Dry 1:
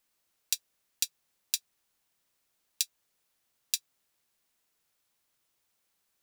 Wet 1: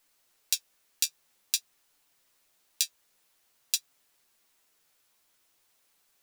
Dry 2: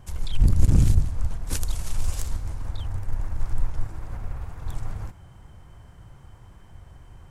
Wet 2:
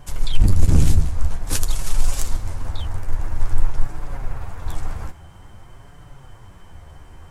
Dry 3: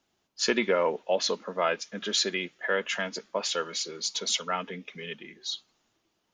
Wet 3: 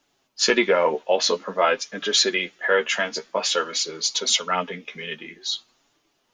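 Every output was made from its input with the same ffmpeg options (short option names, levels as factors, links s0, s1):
-af "equalizer=f=110:t=o:w=2.1:g=-5.5,flanger=delay=6.8:depth=6.6:regen=31:speed=0.5:shape=sinusoidal,alimiter=level_in=4.22:limit=0.891:release=50:level=0:latency=1,volume=0.841"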